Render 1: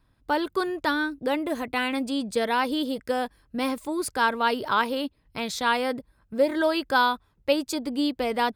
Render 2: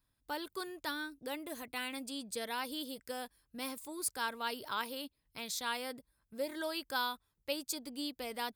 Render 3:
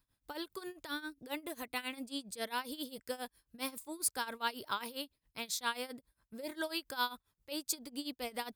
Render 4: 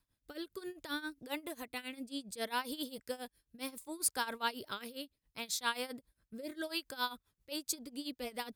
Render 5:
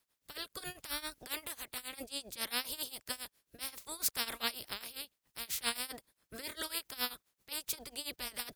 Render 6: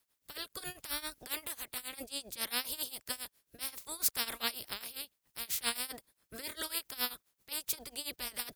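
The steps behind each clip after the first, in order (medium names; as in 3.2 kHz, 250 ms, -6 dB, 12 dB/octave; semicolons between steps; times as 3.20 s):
pre-emphasis filter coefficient 0.8; trim -2.5 dB
tremolo 7.4 Hz, depth 87%; trim +3.5 dB
rotary cabinet horn 0.65 Hz, later 8 Hz, at 6.53 s; trim +2 dB
spectral peaks clipped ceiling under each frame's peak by 27 dB
treble shelf 9.4 kHz +4.5 dB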